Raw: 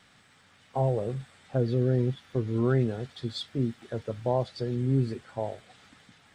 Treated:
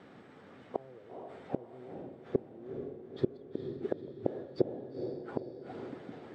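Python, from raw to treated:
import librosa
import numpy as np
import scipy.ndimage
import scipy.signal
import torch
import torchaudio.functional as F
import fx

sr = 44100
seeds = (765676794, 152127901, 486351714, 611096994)

y = fx.gate_flip(x, sr, shuts_db=-27.0, range_db=-38)
y = fx.bandpass_q(y, sr, hz=370.0, q=1.7)
y = fx.echo_diffused(y, sr, ms=463, feedback_pct=51, wet_db=-6)
y = y * librosa.db_to_amplitude(17.0)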